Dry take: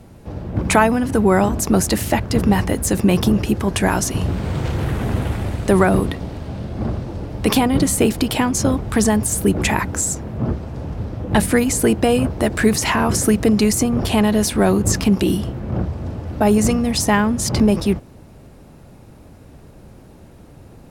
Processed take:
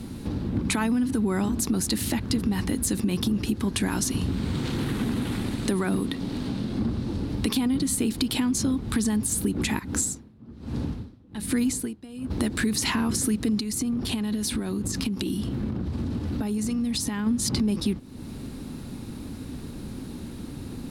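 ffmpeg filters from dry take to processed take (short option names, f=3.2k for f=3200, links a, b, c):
-filter_complex "[0:a]asettb=1/sr,asplit=3[a][b][c];[a]atrim=end=4.564[d];[b]atrim=start=4.56:end=6.81,asetpts=PTS-STARTPTS,afade=t=in:d=0.004:c=qsin,afade=t=out:st=2.246:d=0.004:c=qsin,equalizer=f=71:w=1.5:g=-11.5[e];[c]atrim=start=6.806[f];[d][e]acrossfade=d=0.004:c1=hsin:c2=qsin[g];[g][f]acrossfade=d=0.004:c1=qsin:c2=hsin,asplit=3[h][i][j];[h]afade=t=out:st=9.78:d=0.02[k];[i]aeval=exprs='val(0)*pow(10,-34*(0.5-0.5*cos(2*PI*1.2*n/s))/20)':c=same,afade=t=in:st=9.78:d=0.02,afade=t=out:st=12.3:d=0.02[l];[j]afade=t=in:st=12.3:d=0.02[m];[k][l][m]amix=inputs=3:normalize=0,asplit=3[n][o][p];[n]afade=t=out:st=13.59:d=0.02[q];[o]acompressor=threshold=-24dB:ratio=12:attack=3.2:release=140:knee=1:detection=peak,afade=t=in:st=13.59:d=0.02,afade=t=out:st=17.26:d=0.02[r];[p]afade=t=in:st=17.26:d=0.02[s];[q][r][s]amix=inputs=3:normalize=0,equalizer=f=250:t=o:w=0.67:g=10,equalizer=f=630:t=o:w=0.67:g=-9,equalizer=f=4k:t=o:w=0.67:g=9,equalizer=f=10k:t=o:w=0.67:g=6,alimiter=limit=-5dB:level=0:latency=1:release=129,acompressor=threshold=-31dB:ratio=3,volume=3.5dB"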